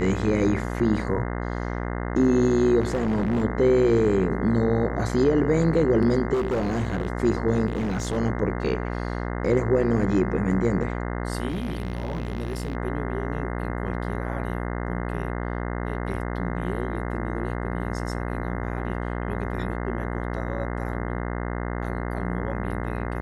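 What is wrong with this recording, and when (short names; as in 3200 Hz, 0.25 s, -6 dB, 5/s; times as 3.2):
buzz 60 Hz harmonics 35 -29 dBFS
2.8–3.45 clipped -19.5 dBFS
6.33–7.08 clipped -21 dBFS
7.66–8.18 clipped -22 dBFS
11.48–12.75 clipped -24.5 dBFS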